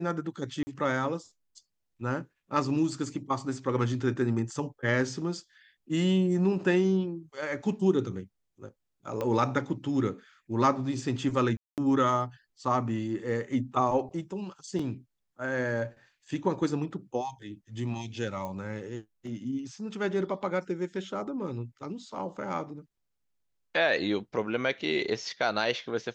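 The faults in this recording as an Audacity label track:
0.630000	0.670000	gap 40 ms
9.210000	9.210000	pop -19 dBFS
11.570000	11.780000	gap 0.208 s
14.790000	14.790000	gap 3.8 ms
18.450000	18.450000	pop -24 dBFS

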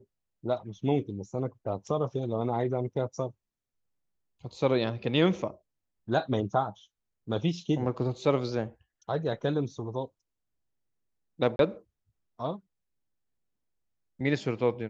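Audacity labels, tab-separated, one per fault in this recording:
11.560000	11.590000	gap 32 ms

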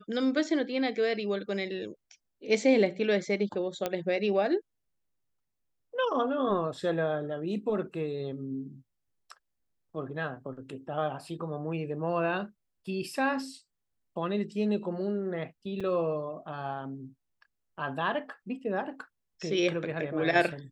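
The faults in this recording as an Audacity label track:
3.860000	3.860000	pop -15 dBFS
15.800000	15.810000	gap 5.6 ms

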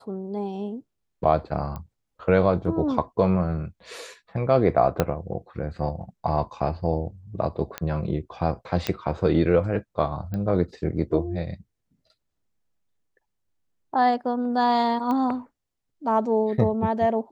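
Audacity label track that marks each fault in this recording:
1.760000	1.760000	pop -22 dBFS
5.000000	5.000000	pop -7 dBFS
7.780000	7.780000	pop -13 dBFS
8.870000	8.870000	pop -10 dBFS
10.340000	10.340000	pop -20 dBFS
15.110000	15.110000	pop -17 dBFS

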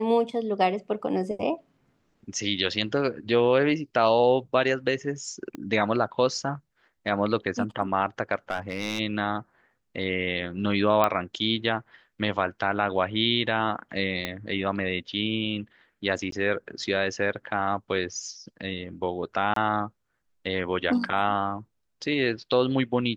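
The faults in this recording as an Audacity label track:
5.550000	5.550000	pop -23 dBFS
8.500000	8.990000	clipped -22.5 dBFS
11.040000	11.040000	pop -9 dBFS
14.250000	14.250000	pop -14 dBFS
16.310000	16.320000	gap 13 ms
19.540000	19.560000	gap 23 ms

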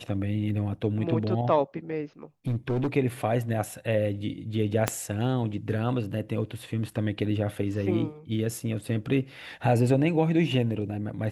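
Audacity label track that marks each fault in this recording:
2.470000	2.880000	clipped -23 dBFS
4.880000	4.880000	pop -7 dBFS

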